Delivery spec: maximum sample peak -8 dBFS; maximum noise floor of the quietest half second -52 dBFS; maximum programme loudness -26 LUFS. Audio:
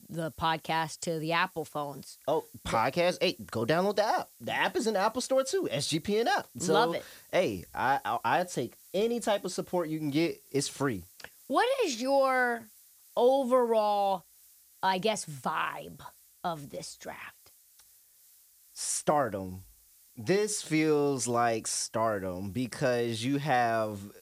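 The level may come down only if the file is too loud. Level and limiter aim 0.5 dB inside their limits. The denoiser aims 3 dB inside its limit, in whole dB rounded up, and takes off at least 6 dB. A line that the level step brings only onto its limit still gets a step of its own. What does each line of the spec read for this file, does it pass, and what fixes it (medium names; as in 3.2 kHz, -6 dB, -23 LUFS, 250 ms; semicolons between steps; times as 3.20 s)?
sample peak -14.0 dBFS: pass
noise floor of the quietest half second -61 dBFS: pass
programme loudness -30.0 LUFS: pass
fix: none needed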